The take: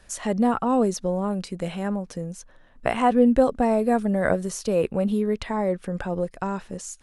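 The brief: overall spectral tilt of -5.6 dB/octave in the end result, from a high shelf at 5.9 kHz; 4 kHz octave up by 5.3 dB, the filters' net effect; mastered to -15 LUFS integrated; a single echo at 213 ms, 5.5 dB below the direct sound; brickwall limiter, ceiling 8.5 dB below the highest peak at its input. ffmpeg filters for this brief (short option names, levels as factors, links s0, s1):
-af "equalizer=f=4000:t=o:g=9,highshelf=f=5900:g=-4,alimiter=limit=0.2:level=0:latency=1,aecho=1:1:213:0.531,volume=2.99"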